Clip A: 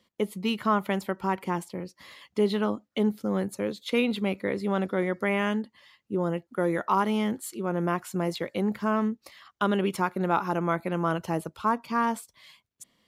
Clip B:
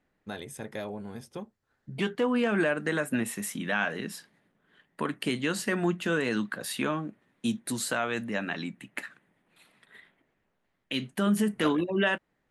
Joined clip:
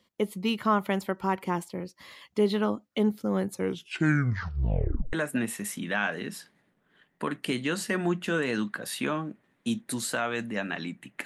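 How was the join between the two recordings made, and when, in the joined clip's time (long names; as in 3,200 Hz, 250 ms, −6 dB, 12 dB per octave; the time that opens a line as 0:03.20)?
clip A
0:03.50: tape stop 1.63 s
0:05.13: continue with clip B from 0:02.91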